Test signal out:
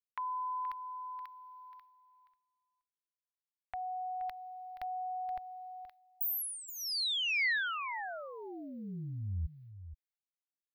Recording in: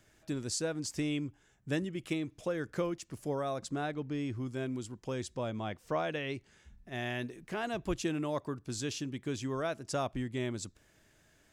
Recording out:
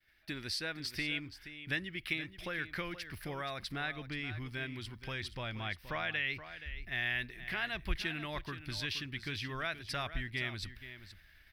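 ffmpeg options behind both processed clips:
-filter_complex "[0:a]asubboost=boost=3:cutoff=140,agate=range=-33dB:threshold=-57dB:ratio=3:detection=peak,equalizer=f=125:t=o:w=1:g=-9,equalizer=f=250:t=o:w=1:g=-6,equalizer=f=500:t=o:w=1:g=-10,equalizer=f=1k:t=o:w=1:g=-5,equalizer=f=2k:t=o:w=1:g=11,equalizer=f=4k:t=o:w=1:g=3,equalizer=f=8k:t=o:w=1:g=-12,aexciter=amount=1.2:drive=2.5:freq=3.8k,asplit=2[a][b];[b]acompressor=threshold=-44dB:ratio=6,volume=3dB[c];[a][c]amix=inputs=2:normalize=0,aecho=1:1:475:0.237,volume=-3dB"

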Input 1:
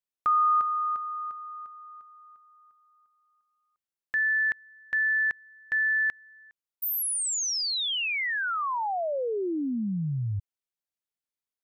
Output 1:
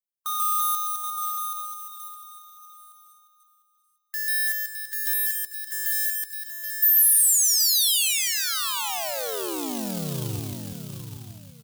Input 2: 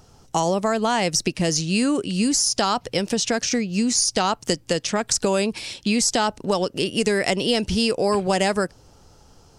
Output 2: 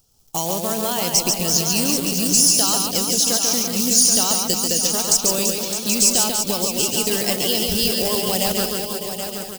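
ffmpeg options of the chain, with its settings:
-filter_complex "[0:a]afftdn=nr=12:nf=-32,lowshelf=f=70:g=6,asplit=2[a][b];[b]aecho=0:1:140|336|610.4|994.6|1532:0.631|0.398|0.251|0.158|0.1[c];[a][c]amix=inputs=2:normalize=0,acrusher=bits=3:mode=log:mix=0:aa=0.000001,equalizer=f=4.6k:w=0.37:g=-5.5,asplit=2[d][e];[e]aecho=0:1:778:0.398[f];[d][f]amix=inputs=2:normalize=0,aexciter=amount=4.1:drive=7.3:freq=2.8k,volume=-5dB"

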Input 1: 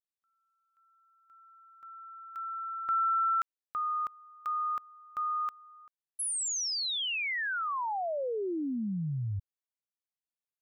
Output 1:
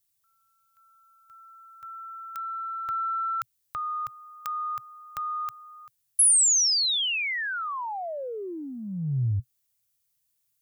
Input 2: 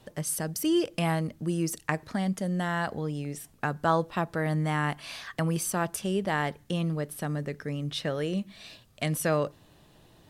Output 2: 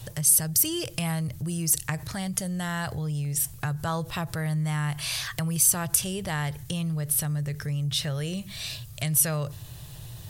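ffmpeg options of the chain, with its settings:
-af "lowshelf=f=170:t=q:w=3:g=11,acompressor=threshold=-42dB:ratio=2:attack=3.7:release=45:detection=peak,crystalizer=i=4:c=0,volume=5dB"

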